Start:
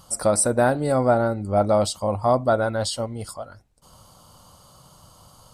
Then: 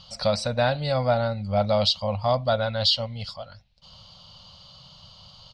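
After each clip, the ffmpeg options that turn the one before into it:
ffmpeg -i in.wav -af "firequalizer=gain_entry='entry(190,0);entry(340,-24);entry(530,-3);entry(1300,-5);entry(2800,11);entry(4300,12);entry(8800,-27)':delay=0.05:min_phase=1" out.wav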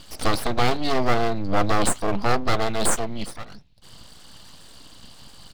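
ffmpeg -i in.wav -af "lowshelf=frequency=170:gain=7.5,aeval=exprs='abs(val(0))':channel_layout=same,volume=3dB" out.wav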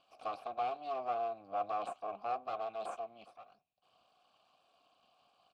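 ffmpeg -i in.wav -filter_complex "[0:a]asplit=3[link_01][link_02][link_03];[link_01]bandpass=frequency=730:width_type=q:width=8,volume=0dB[link_04];[link_02]bandpass=frequency=1090:width_type=q:width=8,volume=-6dB[link_05];[link_03]bandpass=frequency=2440:width_type=q:width=8,volume=-9dB[link_06];[link_04][link_05][link_06]amix=inputs=3:normalize=0,volume=-7dB" out.wav

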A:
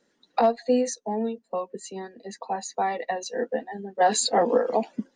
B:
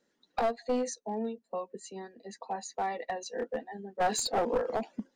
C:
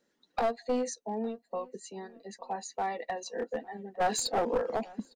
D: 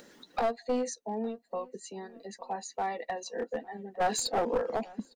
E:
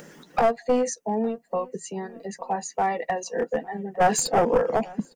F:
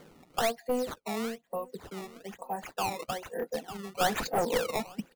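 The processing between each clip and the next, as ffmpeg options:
ffmpeg -i in.wav -af "aeval=exprs='clip(val(0),-1,0.1)':channel_layout=same,volume=-6.5dB" out.wav
ffmpeg -i in.wav -filter_complex "[0:a]asplit=2[link_01][link_02];[link_02]adelay=856,lowpass=frequency=2600:poles=1,volume=-22.5dB,asplit=2[link_03][link_04];[link_04]adelay=856,lowpass=frequency=2600:poles=1,volume=0.2[link_05];[link_01][link_03][link_05]amix=inputs=3:normalize=0" out.wav
ffmpeg -i in.wav -af "acompressor=mode=upward:threshold=-39dB:ratio=2.5" out.wav
ffmpeg -i in.wav -af "equalizer=frequency=160:width_type=o:width=0.33:gain=12,equalizer=frequency=250:width_type=o:width=0.33:gain=-3,equalizer=frequency=4000:width_type=o:width=0.33:gain=-12,volume=8.5dB" out.wav
ffmpeg -i in.wav -af "acrusher=samples=16:mix=1:aa=0.000001:lfo=1:lforange=25.6:lforate=1.1,volume=-8dB" out.wav

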